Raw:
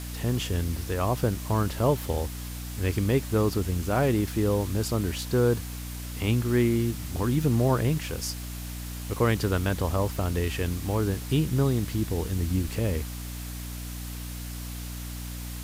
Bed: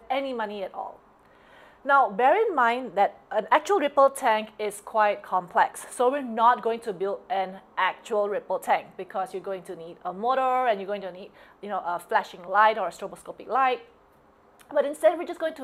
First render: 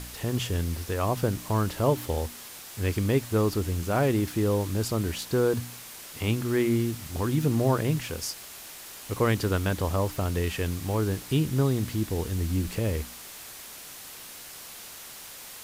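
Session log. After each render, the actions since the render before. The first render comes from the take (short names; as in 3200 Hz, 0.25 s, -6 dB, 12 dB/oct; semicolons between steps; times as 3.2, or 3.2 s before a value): de-hum 60 Hz, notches 5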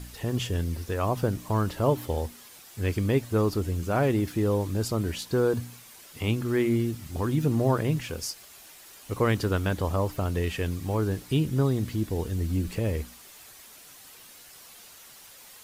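denoiser 8 dB, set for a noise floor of -44 dBFS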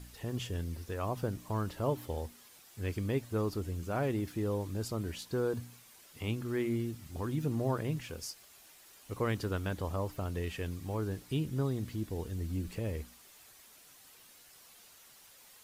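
gain -8.5 dB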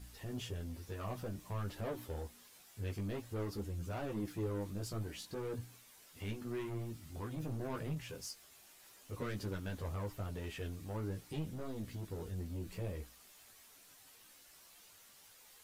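soft clip -33 dBFS, distortion -10 dB; chorus voices 6, 0.47 Hz, delay 15 ms, depth 4.9 ms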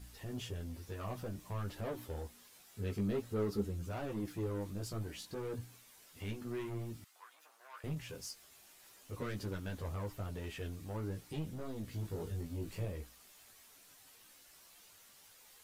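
2.72–3.77 small resonant body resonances 210/410/1300/3900 Hz, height 9 dB; 7.04–7.84 ladder high-pass 850 Hz, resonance 25%; 11.9–12.85 doubler 19 ms -3 dB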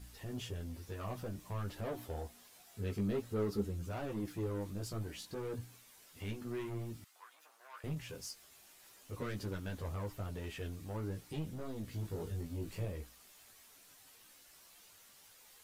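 1.92–2.78 bell 700 Hz +9.5 dB 0.26 oct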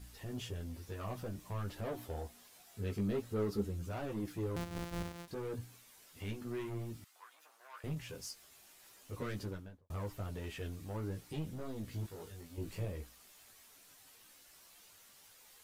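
4.56–5.28 sample sorter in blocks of 256 samples; 9.35–9.9 studio fade out; 12.06–12.58 low shelf 460 Hz -12 dB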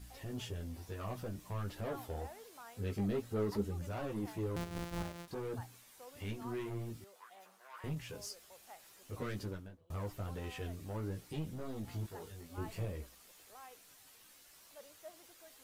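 add bed -32.5 dB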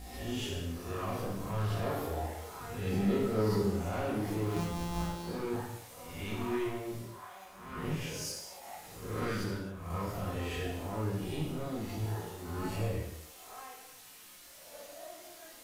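spectral swells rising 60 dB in 0.80 s; non-linear reverb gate 0.31 s falling, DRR -3.5 dB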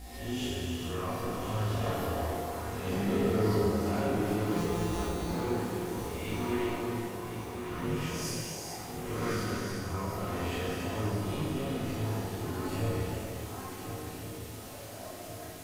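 swung echo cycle 1.413 s, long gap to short 3:1, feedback 52%, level -10 dB; non-linear reverb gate 0.49 s flat, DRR 0.5 dB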